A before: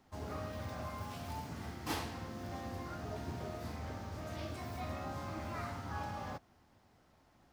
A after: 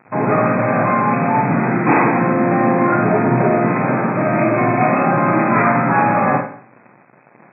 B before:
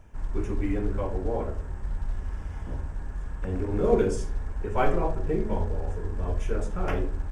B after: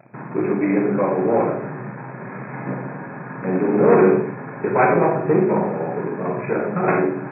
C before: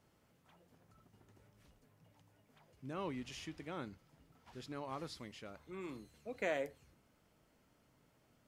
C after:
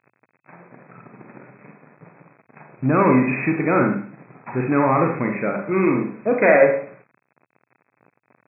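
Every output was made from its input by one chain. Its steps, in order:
leveller curve on the samples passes 3
four-comb reverb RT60 0.49 s, combs from 31 ms, DRR 2.5 dB
in parallel at −3 dB: downward compressor, threshold −23 dBFS
on the sum: bit reduction 10 bits
brick-wall band-pass 110–2,600 Hz
normalise the peak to −3 dBFS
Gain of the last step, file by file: +13.0, −0.5, +11.5 decibels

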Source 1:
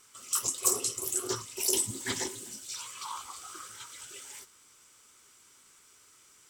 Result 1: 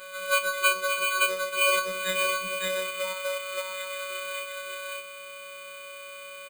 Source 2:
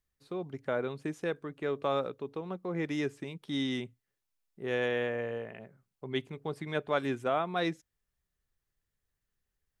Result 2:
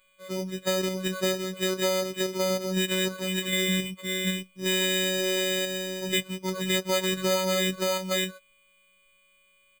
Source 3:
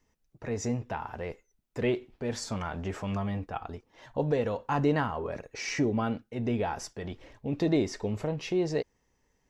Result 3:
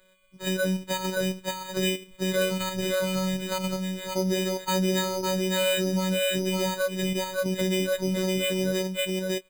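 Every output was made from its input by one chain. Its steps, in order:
every partial snapped to a pitch grid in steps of 6 semitones
comb filter 5.2 ms, depth 51%
on a send: single-tap delay 561 ms −3.5 dB
on the sum: decimation without filtering 8×
in parallel at −2.5 dB: output level in coarse steps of 16 dB
on the sum: phases set to zero 187 Hz
downward compressor 2 to 1, threshold −32 dBFS
loudness normalisation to −27 LKFS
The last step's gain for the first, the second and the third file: +3.0, +8.0, +6.0 decibels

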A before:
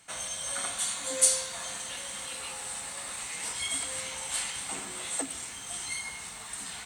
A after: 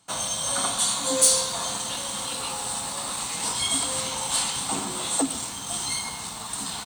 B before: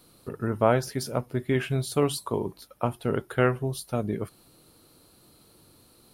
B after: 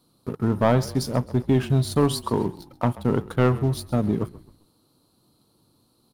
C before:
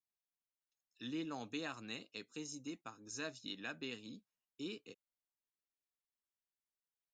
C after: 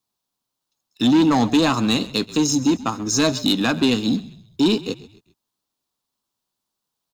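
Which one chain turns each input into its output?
octave-band graphic EQ 125/250/1,000/2,000/4,000 Hz +6/+7/+8/−9/+6 dB
leveller curve on the samples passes 2
echo with shifted repeats 132 ms, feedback 41%, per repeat −37 Hz, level −18.5 dB
normalise the peak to −9 dBFS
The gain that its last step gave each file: −1.5, −7.0, +17.0 decibels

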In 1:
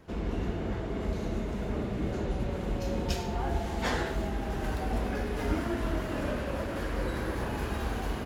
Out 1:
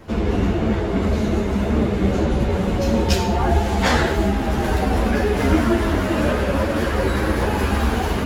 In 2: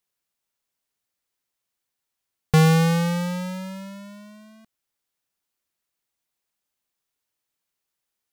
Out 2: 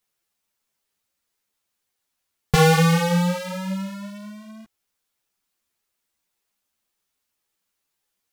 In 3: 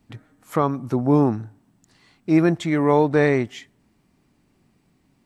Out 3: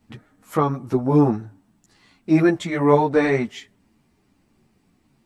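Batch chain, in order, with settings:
string-ensemble chorus
loudness normalisation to −20 LKFS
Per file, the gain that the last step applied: +16.0, +7.5, +3.5 decibels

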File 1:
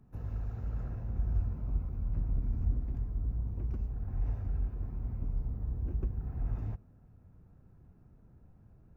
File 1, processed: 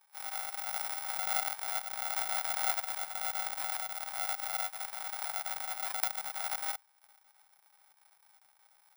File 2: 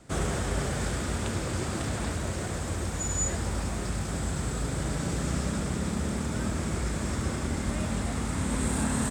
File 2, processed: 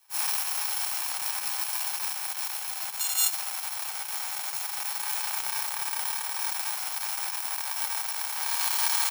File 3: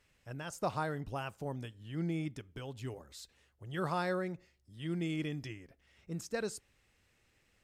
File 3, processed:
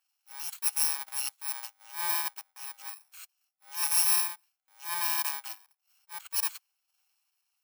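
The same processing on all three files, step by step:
samples in bit-reversed order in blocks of 64 samples
transient designer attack −8 dB, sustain −12 dB
elliptic high-pass filter 760 Hz, stop band 70 dB
multiband upward and downward expander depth 40%
normalise the peak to −12 dBFS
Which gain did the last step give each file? +13.5, +6.5, +10.5 decibels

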